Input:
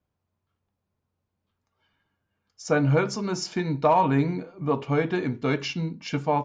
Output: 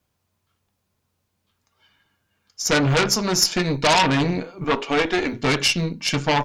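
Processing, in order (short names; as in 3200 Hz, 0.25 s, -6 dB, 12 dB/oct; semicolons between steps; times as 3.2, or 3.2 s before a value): 4.64–5.33 HPF 260 Hz 24 dB/oct; added harmonics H 5 -10 dB, 8 -13 dB, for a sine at -10 dBFS; high shelf 2000 Hz +11 dB; gain -3 dB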